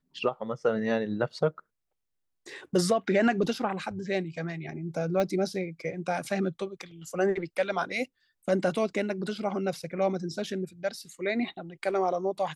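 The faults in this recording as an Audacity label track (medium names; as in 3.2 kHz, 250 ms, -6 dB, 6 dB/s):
5.200000	5.200000	pop -16 dBFS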